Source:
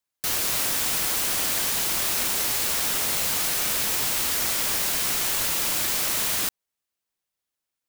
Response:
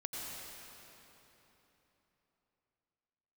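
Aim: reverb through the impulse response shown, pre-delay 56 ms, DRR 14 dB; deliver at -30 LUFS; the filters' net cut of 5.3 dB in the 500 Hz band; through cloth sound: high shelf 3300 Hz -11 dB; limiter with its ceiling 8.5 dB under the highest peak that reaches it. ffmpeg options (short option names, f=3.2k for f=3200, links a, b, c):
-filter_complex "[0:a]equalizer=f=500:t=o:g=-6.5,alimiter=limit=-20dB:level=0:latency=1,asplit=2[a][b];[1:a]atrim=start_sample=2205,adelay=56[c];[b][c]afir=irnorm=-1:irlink=0,volume=-15dB[d];[a][d]amix=inputs=2:normalize=0,highshelf=f=3.3k:g=-11,volume=5dB"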